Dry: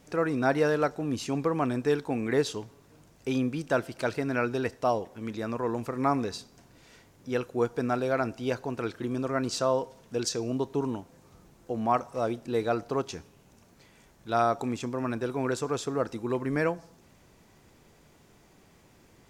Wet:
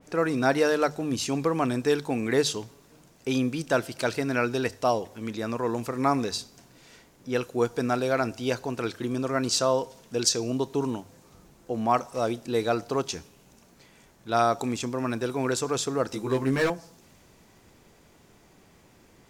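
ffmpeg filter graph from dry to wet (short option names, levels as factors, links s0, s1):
-filter_complex "[0:a]asettb=1/sr,asplit=3[s0][s1][s2];[s0]atrim=end=16.104[s3];[s1]atrim=start=16.1:end=16.7,asetpts=PTS-STARTPTS,afade=t=in:d=0.004:c=qsin,afade=t=out:st=0.596:d=0.004:c=qsin,volume=13.3,asoftclip=hard,volume=0.075,asplit=2[s4][s5];[s5]adelay=15,volume=0.75[s6];[s4][s6]amix=inputs=2:normalize=0,atrim=end_sample=26460[s7];[s2]atrim=start=16.696[s8];[s3][s7]acrossfade=d=0.004:c1=hsin:c2=qsin[s9];[s9][s8]acrossfade=d=0.004:c1=qsin:c2=hsin,bandreject=f=50:t=h:w=6,bandreject=f=100:t=h:w=6,bandreject=f=150:t=h:w=6,adynamicequalizer=threshold=0.00501:dfrequency=2700:dqfactor=0.7:tfrequency=2700:tqfactor=0.7:attack=5:release=100:ratio=0.375:range=3.5:mode=boostabove:tftype=highshelf,volume=1.26"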